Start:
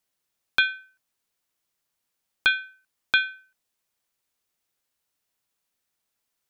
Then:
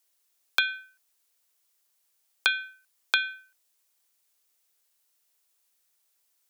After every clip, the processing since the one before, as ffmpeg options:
-af "highpass=f=300:w=0.5412,highpass=f=300:w=1.3066,highshelf=f=4.1k:g=9.5,acompressor=threshold=-20dB:ratio=6"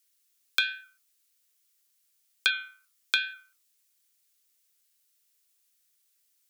-af "equalizer=f=820:w=1.2:g=-14,flanger=delay=3.8:depth=9.7:regen=73:speed=1.2:shape=triangular,volume=5.5dB"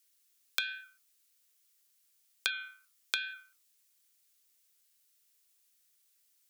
-af "acompressor=threshold=-29dB:ratio=6"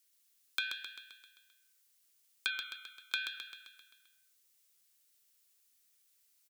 -af "volume=17.5dB,asoftclip=hard,volume=-17.5dB,aecho=1:1:131|262|393|524|655|786|917:0.501|0.281|0.157|0.088|0.0493|0.0276|0.0155,volume=-1.5dB"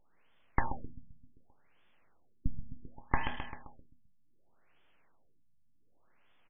-af "flanger=delay=8:depth=3.5:regen=71:speed=0.31:shape=triangular,aeval=exprs='abs(val(0))':c=same,afftfilt=real='re*lt(b*sr/1024,230*pow(3600/230,0.5+0.5*sin(2*PI*0.67*pts/sr)))':imag='im*lt(b*sr/1024,230*pow(3600/230,0.5+0.5*sin(2*PI*0.67*pts/sr)))':win_size=1024:overlap=0.75,volume=14.5dB"

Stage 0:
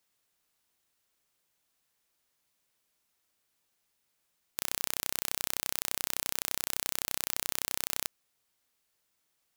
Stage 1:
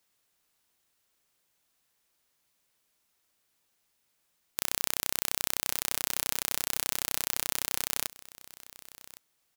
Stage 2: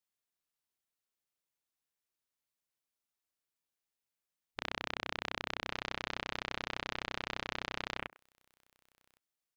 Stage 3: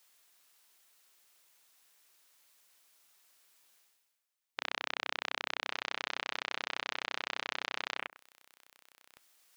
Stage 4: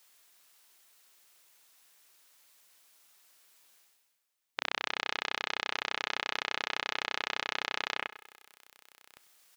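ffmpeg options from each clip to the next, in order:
-af "aecho=1:1:1111:0.119,volume=2.5dB"
-filter_complex "[0:a]acrossover=split=3700[a][b];[b]acompressor=threshold=-47dB:ratio=4:attack=1:release=60[c];[a][c]amix=inputs=2:normalize=0,afwtdn=0.00355"
-af "highpass=f=780:p=1,areverse,acompressor=mode=upward:threshold=-53dB:ratio=2.5,areverse,volume=3.5dB"
-af "aecho=1:1:97|194|291|388|485:0.126|0.0743|0.0438|0.0259|0.0153,volume=3.5dB"

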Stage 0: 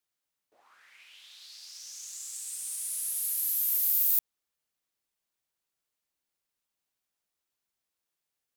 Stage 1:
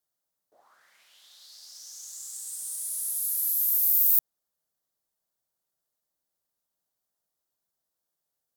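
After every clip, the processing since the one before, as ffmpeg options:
-af "equalizer=f=160:t=o:w=0.67:g=4,equalizer=f=630:t=o:w=0.67:g=6,equalizer=f=2.5k:t=o:w=0.67:g=-12,equalizer=f=16k:t=o:w=0.67:g=5"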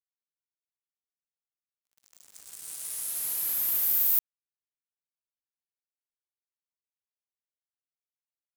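-af "acrusher=bits=4:mix=0:aa=0.5,volume=-3dB"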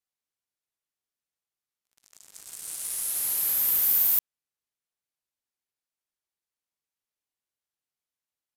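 -af "aresample=32000,aresample=44100,volume=4dB"

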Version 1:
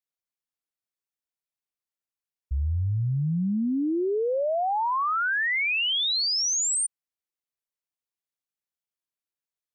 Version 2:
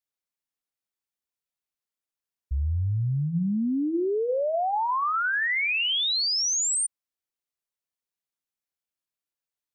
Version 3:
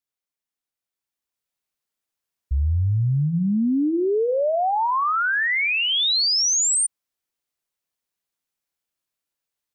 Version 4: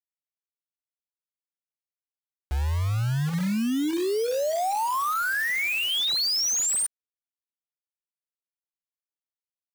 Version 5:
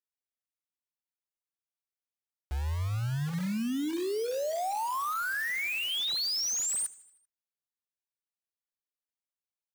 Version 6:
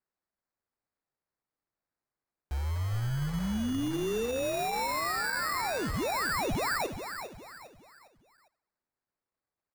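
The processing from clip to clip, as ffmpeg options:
-af "bandreject=f=157.8:t=h:w=4,bandreject=f=315.6:t=h:w=4,bandreject=f=473.4:t=h:w=4,bandreject=f=631.2:t=h:w=4,bandreject=f=789:t=h:w=4,bandreject=f=946.8:t=h:w=4,bandreject=f=1.1046k:t=h:w=4,bandreject=f=1.2624k:t=h:w=4,bandreject=f=1.4202k:t=h:w=4,bandreject=f=1.578k:t=h:w=4,bandreject=f=1.7358k:t=h:w=4,bandreject=f=1.8936k:t=h:w=4,bandreject=f=2.0514k:t=h:w=4,bandreject=f=2.2092k:t=h:w=4,bandreject=f=2.367k:t=h:w=4,bandreject=f=2.5248k:t=h:w=4,bandreject=f=2.6826k:t=h:w=4,bandreject=f=2.8404k:t=h:w=4,bandreject=f=2.9982k:t=h:w=4"
-af "alimiter=limit=-23dB:level=0:latency=1:release=119,dynaudnorm=f=810:g=3:m=6dB"
-af "acrusher=bits=4:mix=0:aa=0.000001,volume=-5dB"
-af "aecho=1:1:78|156|234|312|390:0.0944|0.0548|0.0318|0.0184|0.0107,volume=-6dB"
-filter_complex "[0:a]asplit=5[a][b][c][d][e];[b]adelay=404,afreqshift=-64,volume=-9dB[f];[c]adelay=808,afreqshift=-128,volume=-17.6dB[g];[d]adelay=1212,afreqshift=-192,volume=-26.3dB[h];[e]adelay=1616,afreqshift=-256,volume=-34.9dB[i];[a][f][g][h][i]amix=inputs=5:normalize=0,acrusher=samples=14:mix=1:aa=0.000001"

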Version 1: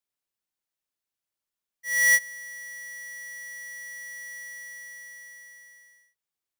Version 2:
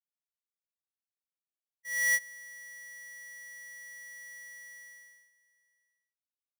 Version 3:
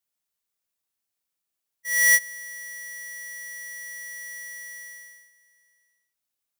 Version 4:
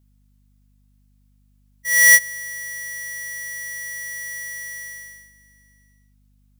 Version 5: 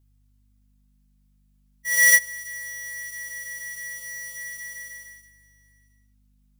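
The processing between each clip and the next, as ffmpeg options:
-af "agate=range=-16dB:threshold=-46dB:ratio=16:detection=peak,volume=-7.5dB"
-af "highshelf=f=6.2k:g=6,volume=8dB"
-af "aeval=exprs='val(0)+0.000631*(sin(2*PI*50*n/s)+sin(2*PI*2*50*n/s)/2+sin(2*PI*3*50*n/s)/3+sin(2*PI*4*50*n/s)/4+sin(2*PI*5*50*n/s)/5)':c=same,volume=6.5dB"
-af "flanger=delay=2.4:depth=3.1:regen=-44:speed=0.36:shape=sinusoidal"

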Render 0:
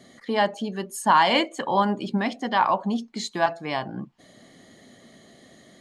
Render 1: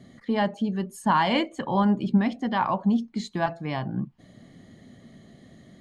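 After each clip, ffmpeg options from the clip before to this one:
-af "bass=f=250:g=14,treble=f=4k:g=-5,volume=-4.5dB"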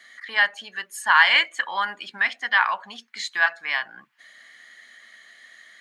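-af "highpass=f=1.7k:t=q:w=2.9,volume=7.5dB"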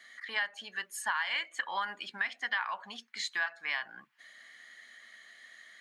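-af "acompressor=threshold=-24dB:ratio=8,volume=-5dB"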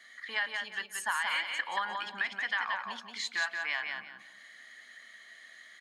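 -af "aecho=1:1:178|356|534|712:0.596|0.155|0.0403|0.0105"

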